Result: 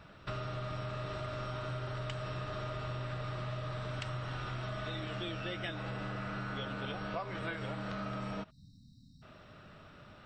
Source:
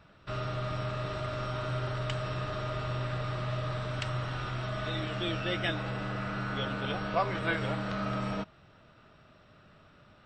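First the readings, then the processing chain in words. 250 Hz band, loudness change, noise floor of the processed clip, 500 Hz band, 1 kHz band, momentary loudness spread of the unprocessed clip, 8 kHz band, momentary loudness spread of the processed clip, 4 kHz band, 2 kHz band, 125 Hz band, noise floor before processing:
-6.0 dB, -6.0 dB, -58 dBFS, -6.0 dB, -6.0 dB, 4 LU, -5.5 dB, 16 LU, -6.0 dB, -6.5 dB, -5.5 dB, -59 dBFS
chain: spectral delete 8.5–9.22, 290–3700 Hz; compressor 6:1, threshold -40 dBFS, peak gain reduction 15.5 dB; gain +3.5 dB

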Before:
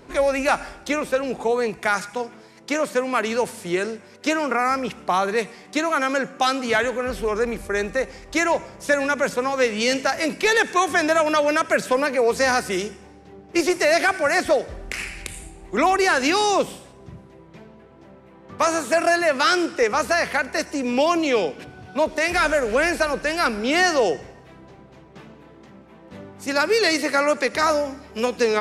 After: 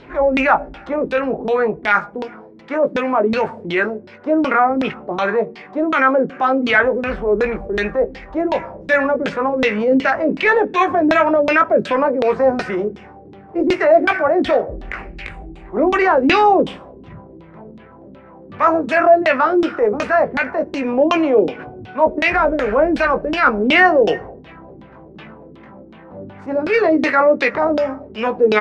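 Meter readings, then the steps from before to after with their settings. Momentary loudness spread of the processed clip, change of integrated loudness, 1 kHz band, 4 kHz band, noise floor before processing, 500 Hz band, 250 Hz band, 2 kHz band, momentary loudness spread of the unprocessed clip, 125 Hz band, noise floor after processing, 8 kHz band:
11 LU, +5.0 dB, +5.0 dB, -2.5 dB, -48 dBFS, +5.5 dB, +6.5 dB, +3.5 dB, 9 LU, +5.5 dB, -42 dBFS, under -15 dB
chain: doubler 19 ms -7 dB; LFO low-pass saw down 2.7 Hz 250–3700 Hz; transient shaper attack -6 dB, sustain 0 dB; gain +4 dB

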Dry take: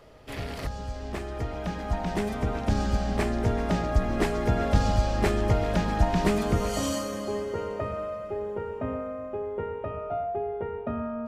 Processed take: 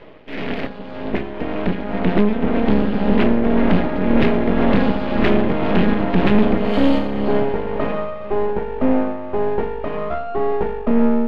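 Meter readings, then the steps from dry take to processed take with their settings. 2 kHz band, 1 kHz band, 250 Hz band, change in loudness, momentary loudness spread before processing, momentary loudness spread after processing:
+9.0 dB, +6.5 dB, +13.5 dB, +9.5 dB, 10 LU, 10 LU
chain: steep high-pass 180 Hz 36 dB/oct; dynamic EQ 240 Hz, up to +6 dB, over -43 dBFS, Q 2; tremolo 1.9 Hz, depth 49%; sine folder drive 11 dB, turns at -9.5 dBFS; fixed phaser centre 2500 Hz, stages 4; half-wave rectifier; air absorption 290 m; gain +6 dB

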